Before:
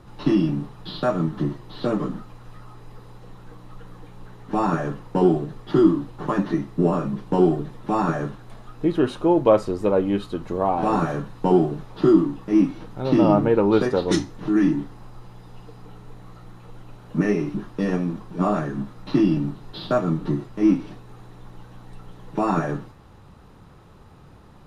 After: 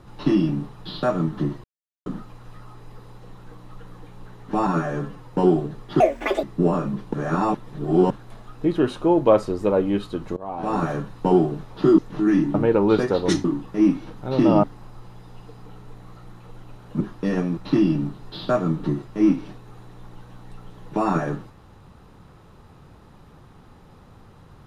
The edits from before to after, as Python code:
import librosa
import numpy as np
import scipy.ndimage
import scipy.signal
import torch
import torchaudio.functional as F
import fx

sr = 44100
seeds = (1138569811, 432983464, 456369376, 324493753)

y = fx.edit(x, sr, fx.silence(start_s=1.64, length_s=0.42),
    fx.stretch_span(start_s=4.67, length_s=0.44, factor=1.5),
    fx.speed_span(start_s=5.78, length_s=0.85, speed=1.96),
    fx.reverse_span(start_s=7.33, length_s=0.97),
    fx.fade_in_from(start_s=10.56, length_s=0.54, floor_db=-21.0),
    fx.swap(start_s=12.18, length_s=1.19, other_s=14.27, other_length_s=0.56),
    fx.cut(start_s=17.2, length_s=0.36),
    fx.cut(start_s=18.13, length_s=0.86), tone=tone)